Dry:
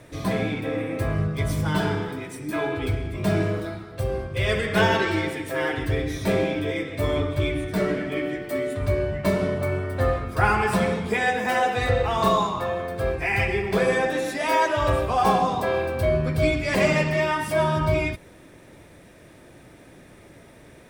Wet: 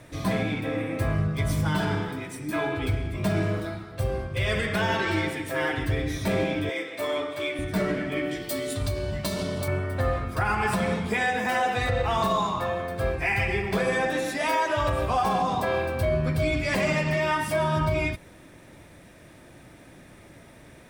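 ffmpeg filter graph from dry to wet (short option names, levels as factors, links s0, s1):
-filter_complex "[0:a]asettb=1/sr,asplit=3[s0][s1][s2];[s0]atrim=end=6.694[s3];[s1]atrim=start=6.69:end=7.59,asetpts=PTS-STARTPTS,afade=t=in:d=0.004:c=qsin,afade=t=out:st=0.896:d=0.004:c=qsin,highpass=410,asplit=2[s4][s5];[s5]adelay=36,volume=0.224[s6];[s4][s6]amix=inputs=2:normalize=0,atrim=end_sample=39690[s7];[s2]atrim=start=7.586[s8];[s3][s7]acrossfade=d=0.004:c1=hsin:c2=qsin[s9];[s9][s8]acrossfade=d=0.004:c1=qsin:c2=hsin,asettb=1/sr,asplit=3[s10][s11][s12];[s10]atrim=end=8.314[s13];[s11]atrim=start=8.31:end=9.68,asetpts=PTS-STARTPTS,afade=t=in:d=0.004:c=qsin,afade=t=out:st=1.366:d=0.004:c=qsin,highshelf=f=2900:t=q:w=1.5:g=9.5,acompressor=threshold=0.0708:ratio=5:attack=3.2:release=140:knee=1:detection=peak,asplit=2[s14][s15];[s15]adelay=18,volume=0.251[s16];[s14][s16]amix=inputs=2:normalize=0,atrim=end_sample=60417[s17];[s12]atrim=start=9.676[s18];[s13][s17]acrossfade=d=0.004:c1=hsin:c2=qsin[s19];[s19][s18]acrossfade=d=0.004:c1=qsin:c2=hsin,equalizer=f=430:t=o:w=0.62:g=-4.5,alimiter=limit=0.168:level=0:latency=1:release=78"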